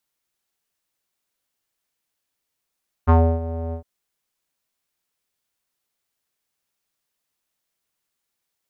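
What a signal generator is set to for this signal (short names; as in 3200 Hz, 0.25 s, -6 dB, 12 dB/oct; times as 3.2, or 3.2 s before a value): synth note square E2 12 dB/oct, low-pass 630 Hz, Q 3, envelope 1 oct, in 0.15 s, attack 26 ms, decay 0.30 s, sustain -15.5 dB, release 0.10 s, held 0.66 s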